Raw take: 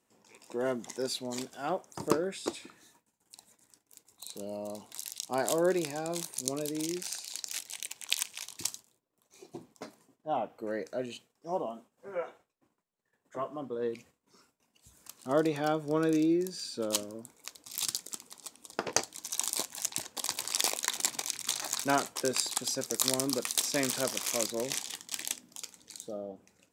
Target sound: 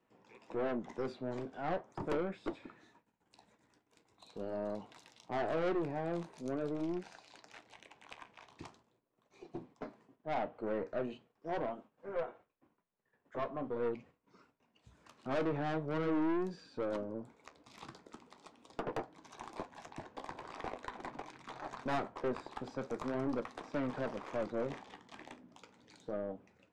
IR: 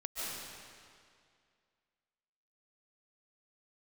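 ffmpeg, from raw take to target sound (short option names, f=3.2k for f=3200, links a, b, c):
-filter_complex "[0:a]lowpass=2.5k,acrossover=split=290|1500[a][b][c];[c]acompressor=threshold=-60dB:ratio=6[d];[a][b][d]amix=inputs=3:normalize=0,aeval=exprs='(tanh(44.7*val(0)+0.4)-tanh(0.4))/44.7':c=same,flanger=delay=6.3:depth=8.2:regen=-64:speed=0.42:shape=sinusoidal,volume=6.5dB"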